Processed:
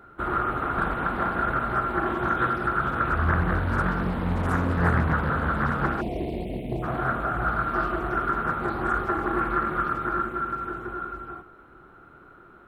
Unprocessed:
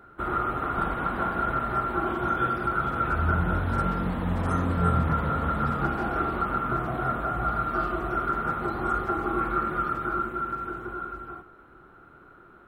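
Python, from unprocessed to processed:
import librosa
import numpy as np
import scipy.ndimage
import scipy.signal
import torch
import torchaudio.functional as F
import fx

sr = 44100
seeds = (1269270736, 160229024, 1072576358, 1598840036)

y = fx.brickwall_bandstop(x, sr, low_hz=750.0, high_hz=2100.0, at=(6.0, 6.82), fade=0.02)
y = fx.doppler_dist(y, sr, depth_ms=0.7)
y = y * librosa.db_to_amplitude(1.5)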